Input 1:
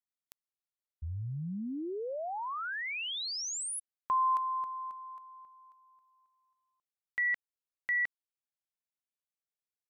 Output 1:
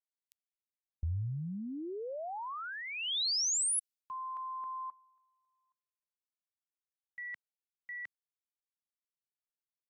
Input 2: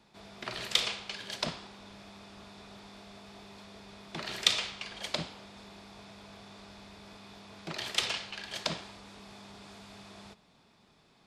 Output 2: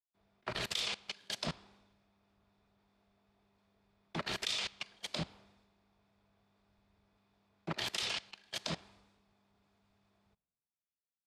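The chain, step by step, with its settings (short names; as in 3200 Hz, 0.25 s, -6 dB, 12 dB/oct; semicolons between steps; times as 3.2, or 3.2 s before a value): level quantiser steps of 20 dB; three-band expander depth 100%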